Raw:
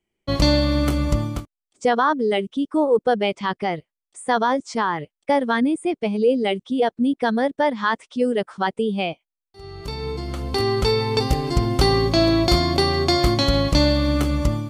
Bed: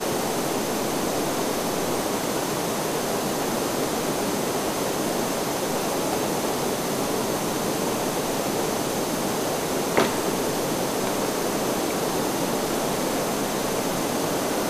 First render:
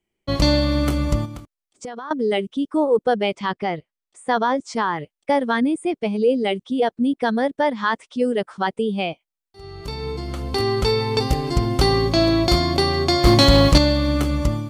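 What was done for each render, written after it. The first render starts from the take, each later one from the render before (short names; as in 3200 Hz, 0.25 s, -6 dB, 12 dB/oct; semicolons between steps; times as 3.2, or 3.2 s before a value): 1.25–2.11 compressor, threshold -30 dBFS; 3.52–4.6 air absorption 52 m; 13.25–13.78 sample leveller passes 2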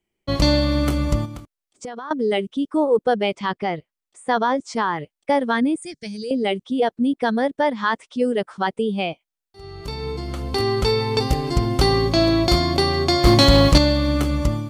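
5.82–6.31 EQ curve 150 Hz 0 dB, 250 Hz -12 dB, 520 Hz -14 dB, 770 Hz -21 dB, 1200 Hz -19 dB, 1700 Hz +2 dB, 2800 Hz -9 dB, 4600 Hz +10 dB, 6600 Hz +13 dB, 13000 Hz -1 dB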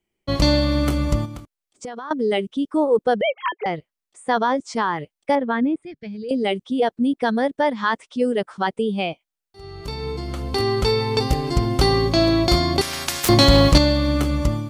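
3.21–3.66 sine-wave speech; 5.35–6.29 air absorption 410 m; 12.81–13.29 spectral compressor 10:1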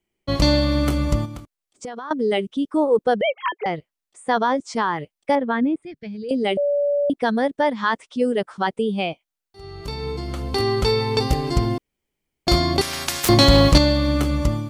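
6.57–7.1 bleep 575 Hz -17 dBFS; 11.78–12.47 room tone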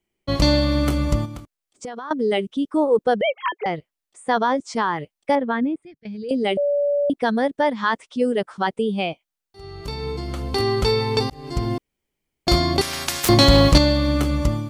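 5.34–6.05 fade out equal-power, to -17 dB; 11.3–11.77 fade in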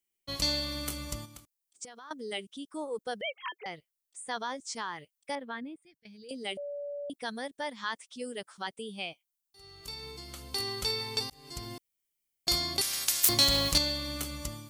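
pre-emphasis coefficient 0.9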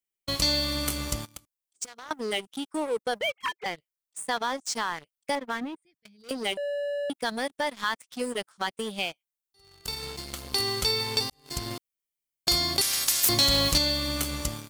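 sample leveller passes 3; compressor 1.5:1, threshold -32 dBFS, peak gain reduction 7.5 dB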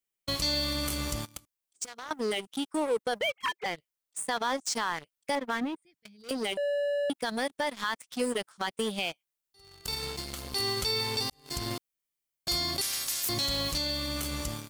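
limiter -22 dBFS, peak gain reduction 10.5 dB; vocal rider within 3 dB 2 s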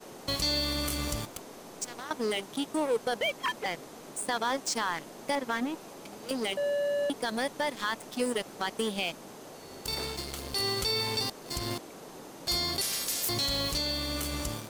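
add bed -21.5 dB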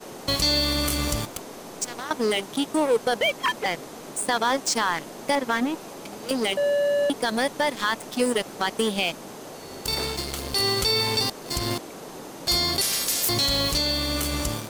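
gain +7 dB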